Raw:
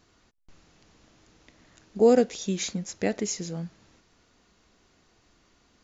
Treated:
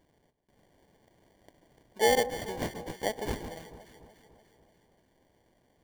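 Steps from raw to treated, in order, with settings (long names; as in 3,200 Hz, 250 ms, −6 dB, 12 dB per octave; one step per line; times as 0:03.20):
high-pass filter 580 Hz 12 dB per octave
flat-topped bell 2,500 Hz −9 dB 1.3 octaves
sample-rate reduction 1,300 Hz, jitter 0%
delay that swaps between a low-pass and a high-pass 146 ms, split 1,300 Hz, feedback 73%, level −11.5 dB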